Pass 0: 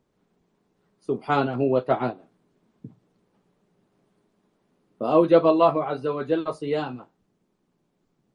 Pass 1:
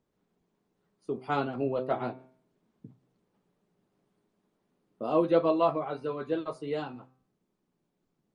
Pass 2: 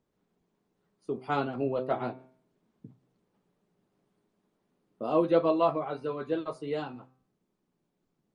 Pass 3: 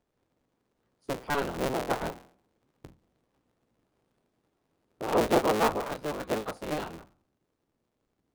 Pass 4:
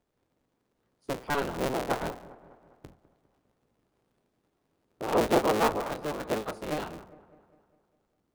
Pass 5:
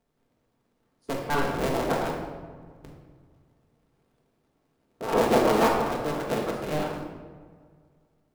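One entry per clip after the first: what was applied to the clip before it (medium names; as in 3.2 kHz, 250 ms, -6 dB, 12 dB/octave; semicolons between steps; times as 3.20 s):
de-hum 129.1 Hz, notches 20; trim -7 dB
no audible change
cycle switcher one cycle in 3, inverted
feedback echo behind a low-pass 202 ms, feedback 54%, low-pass 1.4 kHz, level -17 dB
simulated room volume 760 m³, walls mixed, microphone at 1.6 m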